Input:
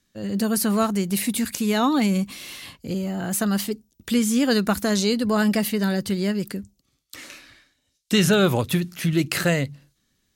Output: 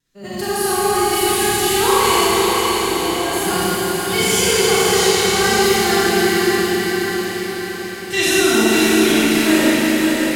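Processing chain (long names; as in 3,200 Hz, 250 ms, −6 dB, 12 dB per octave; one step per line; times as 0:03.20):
phase-vocoder pitch shift with formants kept +10.5 semitones
pitch vibrato 1.3 Hz 25 cents
on a send: feedback delay with all-pass diffusion 554 ms, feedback 55%, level −4 dB
on the sum: four-comb reverb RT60 3.8 s, combs from 28 ms, DRR −10 dB
level −5 dB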